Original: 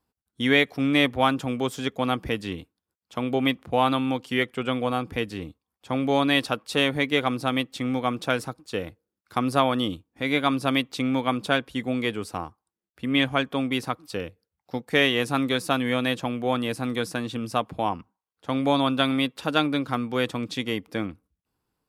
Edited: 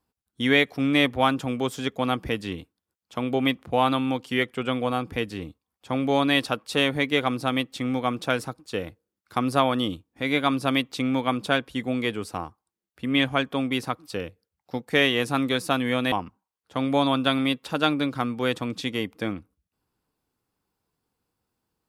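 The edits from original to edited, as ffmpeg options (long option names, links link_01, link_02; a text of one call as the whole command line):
ffmpeg -i in.wav -filter_complex "[0:a]asplit=2[link_01][link_02];[link_01]atrim=end=16.122[link_03];[link_02]atrim=start=17.848[link_04];[link_03][link_04]acrossfade=duration=0.004:curve1=hsin:curve2=hsin" out.wav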